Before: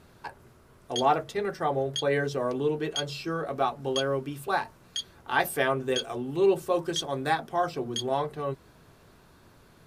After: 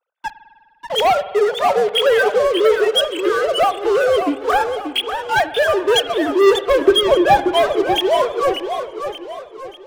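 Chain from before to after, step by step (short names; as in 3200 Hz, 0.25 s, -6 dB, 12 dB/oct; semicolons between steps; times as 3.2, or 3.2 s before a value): sine-wave speech; sample leveller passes 5; 6.81–7.38 low shelf 500 Hz +12 dB; spring tank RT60 1.7 s, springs 50 ms, chirp 60 ms, DRR 13.5 dB; warbling echo 0.586 s, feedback 43%, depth 155 cents, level -8 dB; gain -2 dB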